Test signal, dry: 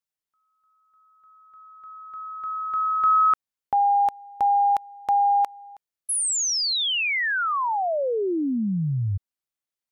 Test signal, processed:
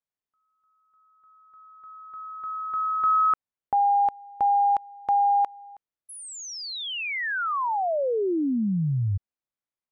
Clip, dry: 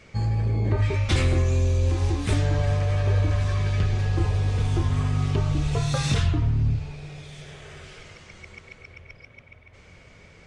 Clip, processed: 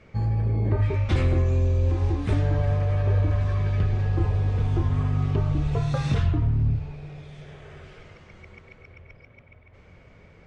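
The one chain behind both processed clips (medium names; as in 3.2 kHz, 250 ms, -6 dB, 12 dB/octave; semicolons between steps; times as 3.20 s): low-pass 3.9 kHz 6 dB/octave; treble shelf 2.3 kHz -9 dB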